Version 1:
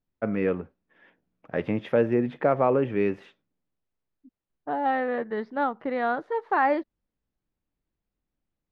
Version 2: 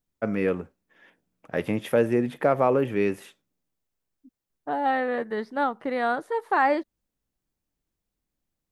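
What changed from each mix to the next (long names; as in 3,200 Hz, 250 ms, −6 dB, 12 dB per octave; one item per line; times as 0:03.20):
master: remove high-frequency loss of the air 230 metres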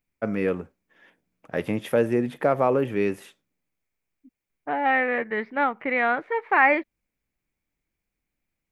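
second voice: add low-pass with resonance 2,300 Hz, resonance Q 7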